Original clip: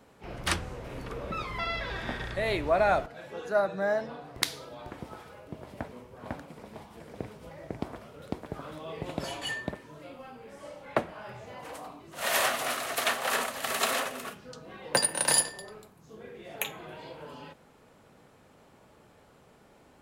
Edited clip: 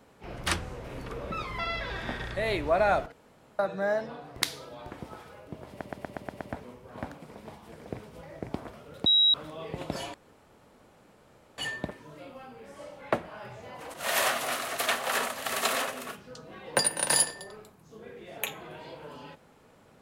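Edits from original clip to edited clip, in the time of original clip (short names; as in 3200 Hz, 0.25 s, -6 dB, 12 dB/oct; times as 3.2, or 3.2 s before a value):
3.12–3.59 room tone
5.69 stutter 0.12 s, 7 plays
8.34–8.62 bleep 3850 Hz -18 dBFS
9.42 insert room tone 1.44 s
11.78–12.12 cut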